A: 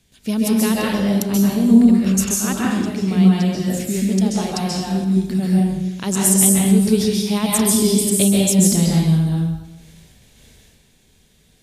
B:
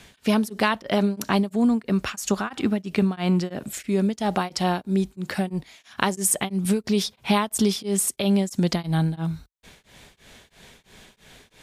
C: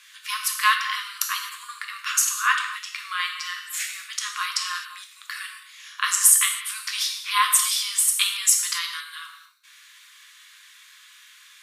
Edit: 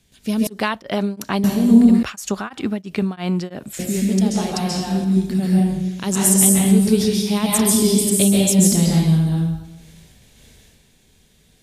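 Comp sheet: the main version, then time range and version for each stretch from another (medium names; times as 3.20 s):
A
0.47–1.44 s: from B
2.03–3.79 s: from B
not used: C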